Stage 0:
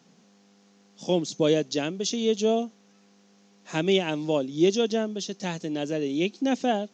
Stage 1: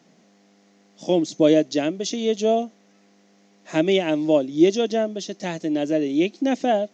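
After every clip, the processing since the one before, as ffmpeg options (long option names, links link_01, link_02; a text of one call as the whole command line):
ffmpeg -i in.wav -af "equalizer=frequency=315:width_type=o:width=0.33:gain=9,equalizer=frequency=630:width_type=o:width=0.33:gain=10,equalizer=frequency=2000:width_type=o:width=0.33:gain=7" out.wav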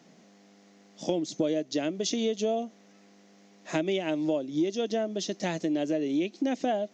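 ffmpeg -i in.wav -af "acompressor=threshold=-25dB:ratio=6" out.wav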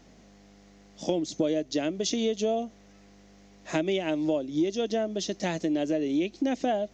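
ffmpeg -i in.wav -af "aeval=exprs='val(0)+0.000891*(sin(2*PI*50*n/s)+sin(2*PI*2*50*n/s)/2+sin(2*PI*3*50*n/s)/3+sin(2*PI*4*50*n/s)/4+sin(2*PI*5*50*n/s)/5)':channel_layout=same,volume=1dB" out.wav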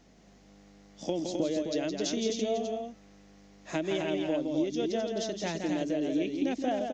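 ffmpeg -i in.wav -af "aecho=1:1:166.2|259.5:0.501|0.562,volume=-4.5dB" out.wav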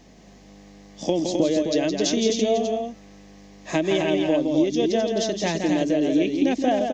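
ffmpeg -i in.wav -af "asuperstop=centerf=1400:order=4:qfactor=7.8,volume=9dB" out.wav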